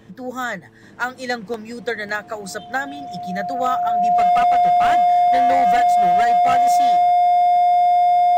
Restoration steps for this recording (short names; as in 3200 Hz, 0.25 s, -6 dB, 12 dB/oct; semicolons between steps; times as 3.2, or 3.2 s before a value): clip repair -12 dBFS; de-hum 111 Hz, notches 4; notch 710 Hz, Q 30; interpolate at 1.54/2.09, 1.4 ms